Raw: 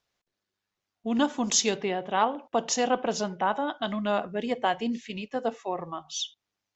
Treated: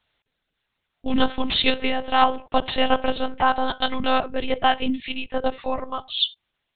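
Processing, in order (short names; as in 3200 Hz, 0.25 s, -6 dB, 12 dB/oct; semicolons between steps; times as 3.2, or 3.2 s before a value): monotone LPC vocoder at 8 kHz 260 Hz; high shelf 2600 Hz +11 dB; gain +6 dB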